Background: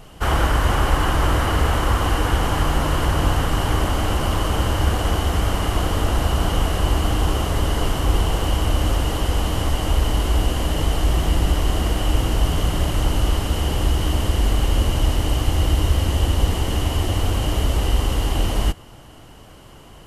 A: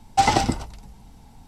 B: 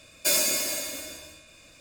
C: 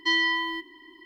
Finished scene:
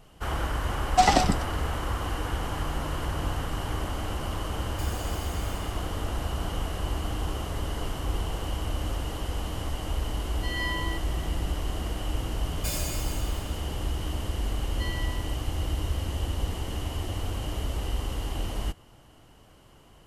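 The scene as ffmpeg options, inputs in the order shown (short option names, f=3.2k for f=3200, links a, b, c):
-filter_complex "[2:a]asplit=2[a][b];[3:a]asplit=2[c][d];[0:a]volume=-11dB[e];[1:a]afreqshift=-50[f];[a]acompressor=threshold=-31dB:ratio=6:attack=3.2:release=140:knee=1:detection=peak[g];[c]dynaudnorm=f=130:g=3:m=16dB[h];[f]atrim=end=1.47,asetpts=PTS-STARTPTS,volume=-1.5dB,afade=t=in:d=0.004:c=hsin,afade=t=out:st=1.466:d=0.004:c=hsin,adelay=800[i];[g]atrim=end=1.8,asetpts=PTS-STARTPTS,volume=-10.5dB,afade=t=in:d=0.004:c=hsin,afade=t=out:st=1.796:d=0.004:c=hsin,adelay=4540[j];[h]atrim=end=1.05,asetpts=PTS-STARTPTS,volume=-17.5dB,afade=t=in:d=0.004:c=hsin,afade=t=out:st=1.046:d=0.004:c=hsin,adelay=10370[k];[b]atrim=end=1.8,asetpts=PTS-STARTPTS,volume=-11dB,afade=t=in:d=0.004:c=hsin,afade=t=out:st=1.796:d=0.004:c=hsin,adelay=12390[l];[d]atrim=end=1.05,asetpts=PTS-STARTPTS,volume=-16dB,afade=t=in:d=0.004:c=hsin,afade=t=out:st=1.046:d=0.004:c=hsin,adelay=14740[m];[e][i][j][k][l][m]amix=inputs=6:normalize=0"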